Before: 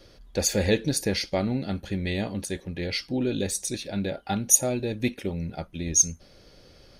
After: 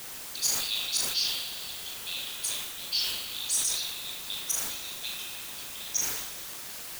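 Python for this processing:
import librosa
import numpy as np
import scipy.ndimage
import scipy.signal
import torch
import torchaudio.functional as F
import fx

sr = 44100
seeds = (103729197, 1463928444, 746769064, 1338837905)

p1 = scipy.signal.sosfilt(scipy.signal.butter(12, 2800.0, 'highpass', fs=sr, output='sos'), x)
p2 = fx.peak_eq(p1, sr, hz=5800.0, db=-2.0, octaves=1.7)
p3 = fx.rev_spring(p2, sr, rt60_s=2.7, pass_ms=(38,), chirp_ms=20, drr_db=-2.5)
p4 = fx.gate_flip(p3, sr, shuts_db=-16.0, range_db=-27)
p5 = fx.quant_dither(p4, sr, seeds[0], bits=6, dither='triangular')
p6 = p4 + F.gain(torch.from_numpy(p5), -5.0).numpy()
p7 = fx.hpss(p6, sr, part='harmonic', gain_db=-8)
p8 = 10.0 ** (-23.5 / 20.0) * np.tanh(p7 / 10.0 ** (-23.5 / 20.0))
p9 = p8 + fx.room_flutter(p8, sr, wall_m=6.6, rt60_s=0.35, dry=0)
p10 = fx.sustainer(p9, sr, db_per_s=40.0)
y = F.gain(torch.from_numpy(p10), 2.5).numpy()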